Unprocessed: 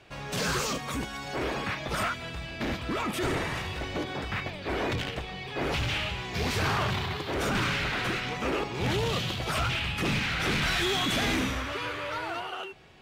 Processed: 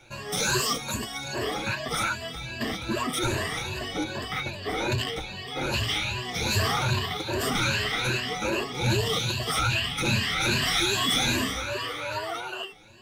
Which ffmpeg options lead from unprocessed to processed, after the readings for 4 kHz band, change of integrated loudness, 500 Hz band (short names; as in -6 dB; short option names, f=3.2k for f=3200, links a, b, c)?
+5.0 dB, +3.0 dB, +1.0 dB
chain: -filter_complex "[0:a]afftfilt=real='re*pow(10,16/40*sin(2*PI*(1.4*log(max(b,1)*sr/1024/100)/log(2)-(2.5)*(pts-256)/sr)))':imag='im*pow(10,16/40*sin(2*PI*(1.4*log(max(b,1)*sr/1024/100)/log(2)-(2.5)*(pts-256)/sr)))':win_size=1024:overlap=0.75,acrossover=split=5000[a][b];[a]adynamicequalizer=threshold=0.00355:dfrequency=3900:dqfactor=3.4:tfrequency=3900:tqfactor=3.4:attack=5:release=100:ratio=0.375:range=2.5:mode=boostabove:tftype=bell[c];[b]aeval=exprs='0.0668*sin(PI/2*1.58*val(0)/0.0668)':c=same[d];[c][d]amix=inputs=2:normalize=0,flanger=delay=7.7:depth=2:regen=33:speed=1.6:shape=triangular,volume=2dB"